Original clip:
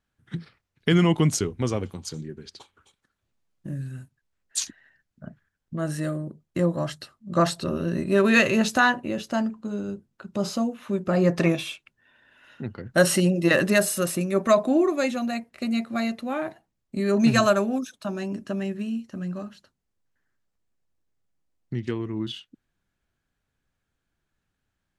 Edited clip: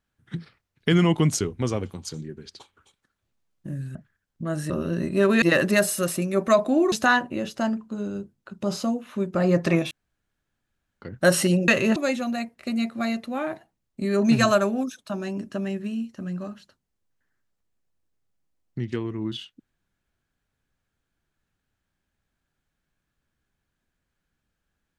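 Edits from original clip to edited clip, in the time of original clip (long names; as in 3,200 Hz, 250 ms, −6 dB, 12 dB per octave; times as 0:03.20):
0:03.95–0:05.27: remove
0:06.02–0:07.65: remove
0:08.37–0:08.65: swap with 0:13.41–0:14.91
0:11.64–0:12.75: fill with room tone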